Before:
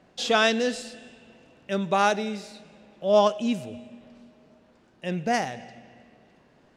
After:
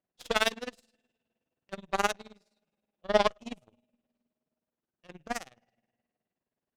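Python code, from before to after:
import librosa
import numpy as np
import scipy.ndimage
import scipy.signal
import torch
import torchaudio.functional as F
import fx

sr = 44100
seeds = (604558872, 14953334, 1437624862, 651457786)

y = x * (1.0 - 0.71 / 2.0 + 0.71 / 2.0 * np.cos(2.0 * np.pi * 19.0 * (np.arange(len(x)) / sr)))
y = fx.cheby_harmonics(y, sr, harmonics=(2, 3, 6, 7), levels_db=(-17, -19, -37, -21), full_scale_db=-8.0)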